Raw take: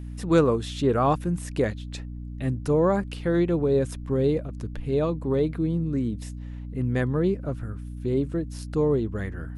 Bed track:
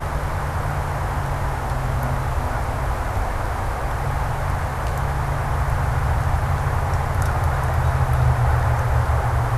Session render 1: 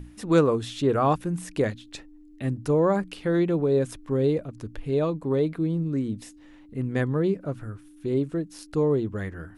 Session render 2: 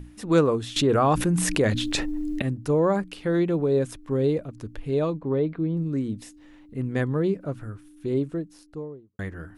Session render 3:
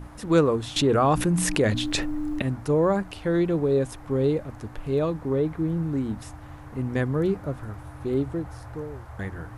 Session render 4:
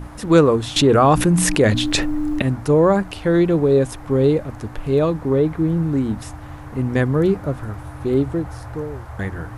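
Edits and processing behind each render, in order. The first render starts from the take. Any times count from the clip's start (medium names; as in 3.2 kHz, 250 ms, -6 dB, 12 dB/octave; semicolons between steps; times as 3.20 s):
hum notches 60/120/180/240 Hz
0.76–2.42 s: level flattener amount 70%; 5.17–5.77 s: distance through air 250 m; 8.09–9.19 s: studio fade out
add bed track -22 dB
trim +7 dB; peak limiter -2 dBFS, peak gain reduction 3 dB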